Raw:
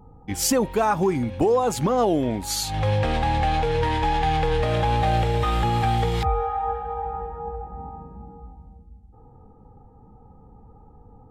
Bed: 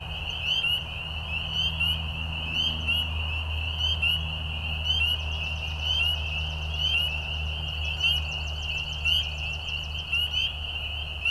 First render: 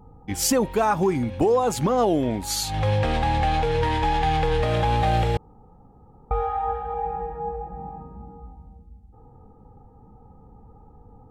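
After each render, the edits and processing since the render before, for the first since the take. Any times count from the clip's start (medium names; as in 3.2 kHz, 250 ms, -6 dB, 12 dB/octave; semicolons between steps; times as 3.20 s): 5.37–6.31 s: room tone; 6.93–8.01 s: comb 6 ms, depth 63%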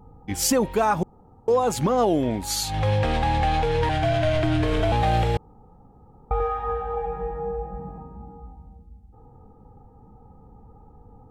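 1.03–1.48 s: room tone; 3.89–4.92 s: frequency shift -160 Hz; 6.38–7.98 s: doubling 21 ms -2 dB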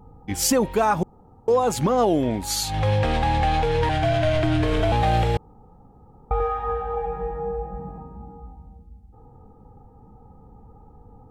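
trim +1 dB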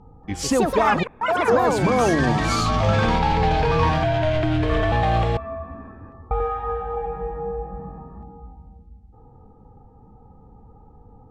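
ever faster or slower copies 236 ms, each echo +6 st, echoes 3; distance through air 75 m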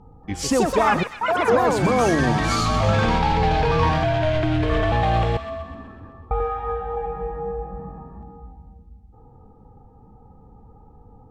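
feedback echo behind a high-pass 126 ms, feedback 55%, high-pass 1.6 kHz, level -10 dB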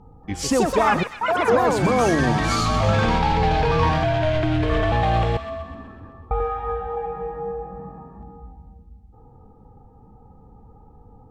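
6.87–8.20 s: high-pass 110 Hz 6 dB/octave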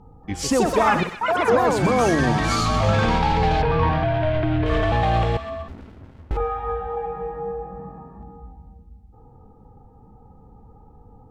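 0.59–1.16 s: flutter echo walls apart 10.3 m, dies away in 0.34 s; 3.62–4.66 s: distance through air 260 m; 5.68–6.37 s: sliding maximum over 65 samples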